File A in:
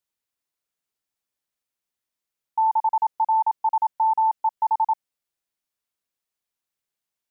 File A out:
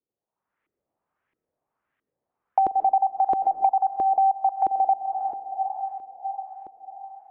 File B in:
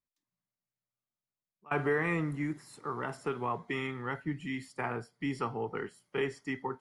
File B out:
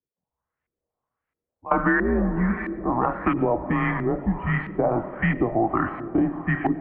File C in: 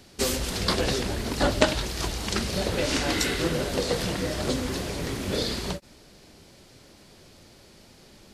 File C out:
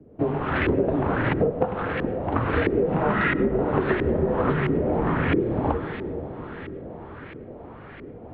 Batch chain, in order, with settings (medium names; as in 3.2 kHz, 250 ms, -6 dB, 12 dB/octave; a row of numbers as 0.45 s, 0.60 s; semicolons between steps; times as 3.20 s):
level rider gain up to 8 dB; echo that smears into a reverb 454 ms, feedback 62%, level -16 dB; mistuned SSB -110 Hz 170–3400 Hz; LFO low-pass saw up 1.5 Hz 350–2100 Hz; algorithmic reverb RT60 1.5 s, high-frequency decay 0.25×, pre-delay 65 ms, DRR 17.5 dB; compression 8:1, threshold -22 dBFS; normalise loudness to -24 LUFS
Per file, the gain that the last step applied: +3.5 dB, +5.5 dB, +3.5 dB